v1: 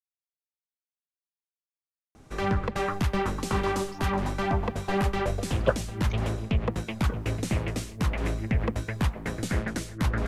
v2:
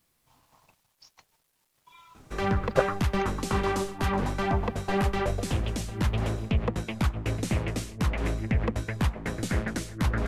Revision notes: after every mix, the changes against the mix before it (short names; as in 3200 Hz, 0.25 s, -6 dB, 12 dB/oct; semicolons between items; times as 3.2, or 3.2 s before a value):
speech: entry -2.90 s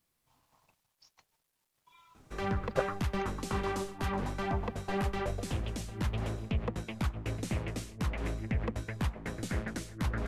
speech -7.5 dB; background -6.5 dB